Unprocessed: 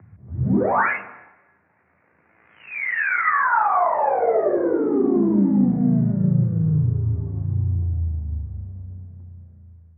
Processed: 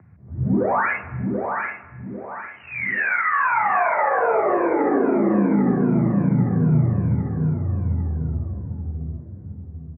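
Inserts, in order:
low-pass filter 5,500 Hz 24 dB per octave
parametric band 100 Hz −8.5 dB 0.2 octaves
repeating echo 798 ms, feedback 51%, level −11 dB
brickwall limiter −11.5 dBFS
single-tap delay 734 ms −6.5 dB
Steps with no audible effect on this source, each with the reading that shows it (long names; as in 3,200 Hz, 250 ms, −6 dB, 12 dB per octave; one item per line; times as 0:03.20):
low-pass filter 5,500 Hz: nothing at its input above 2,400 Hz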